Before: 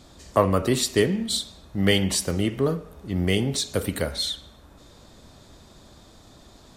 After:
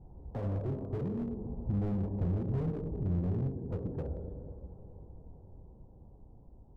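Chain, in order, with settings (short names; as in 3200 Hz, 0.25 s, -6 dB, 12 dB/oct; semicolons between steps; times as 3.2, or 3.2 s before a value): Doppler pass-by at 2.29, 12 m/s, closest 6.5 m; Bessel low-pass 510 Hz, order 6; in parallel at 0 dB: limiter -21 dBFS, peak gain reduction 8.5 dB; on the sum: compressor 2.5:1, threshold -39 dBFS, peak gain reduction 15 dB; diffused feedback echo 0.477 s, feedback 45%, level -15.5 dB; reverb RT60 1.6 s, pre-delay 3 ms, DRR 5.5 dB; slew limiter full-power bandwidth 6.8 Hz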